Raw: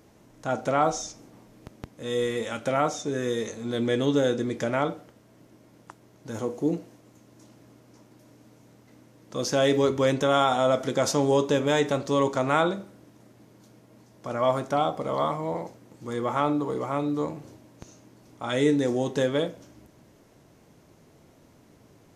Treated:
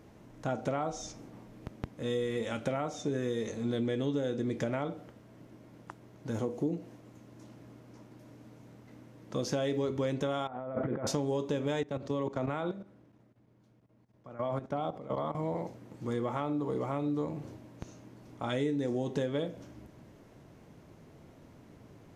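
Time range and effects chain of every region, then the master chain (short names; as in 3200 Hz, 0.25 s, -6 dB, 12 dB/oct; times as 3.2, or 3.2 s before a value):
10.47–11.07 LPF 1900 Hz 24 dB/oct + negative-ratio compressor -33 dBFS
11.83–15.35 high shelf 4600 Hz -9.5 dB + level quantiser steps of 14 dB + three-band expander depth 40%
whole clip: tone controls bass +3 dB, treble -7 dB; compressor, threshold -28 dBFS; dynamic EQ 1300 Hz, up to -4 dB, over -47 dBFS, Q 0.96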